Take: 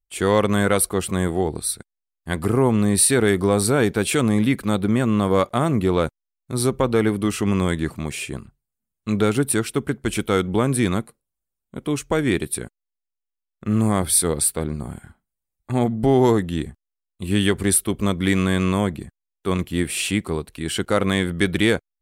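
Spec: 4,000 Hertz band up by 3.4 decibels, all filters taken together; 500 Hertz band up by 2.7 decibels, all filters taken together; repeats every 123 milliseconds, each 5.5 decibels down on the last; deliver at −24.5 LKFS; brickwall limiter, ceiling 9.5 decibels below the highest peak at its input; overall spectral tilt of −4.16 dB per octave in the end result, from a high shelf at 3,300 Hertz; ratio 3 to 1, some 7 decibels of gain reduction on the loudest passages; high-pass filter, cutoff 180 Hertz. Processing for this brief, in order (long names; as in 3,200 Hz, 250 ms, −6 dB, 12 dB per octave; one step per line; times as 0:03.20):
high-pass filter 180 Hz
parametric band 500 Hz +3.5 dB
high-shelf EQ 3,300 Hz −6.5 dB
parametric band 4,000 Hz +8.5 dB
downward compressor 3 to 1, threshold −21 dBFS
brickwall limiter −16 dBFS
repeating echo 123 ms, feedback 53%, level −5.5 dB
level +2 dB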